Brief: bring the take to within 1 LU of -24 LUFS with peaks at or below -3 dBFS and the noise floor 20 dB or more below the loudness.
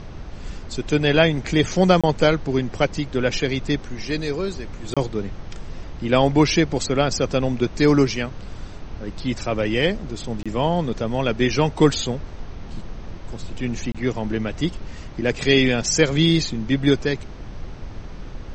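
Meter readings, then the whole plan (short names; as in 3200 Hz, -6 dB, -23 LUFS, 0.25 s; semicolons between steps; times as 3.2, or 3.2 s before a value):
dropouts 4; longest dropout 26 ms; noise floor -36 dBFS; noise floor target -42 dBFS; loudness -21.5 LUFS; peak -1.5 dBFS; loudness target -24.0 LUFS
-> interpolate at 2.01/4.94/10.43/13.92, 26 ms; noise print and reduce 6 dB; gain -2.5 dB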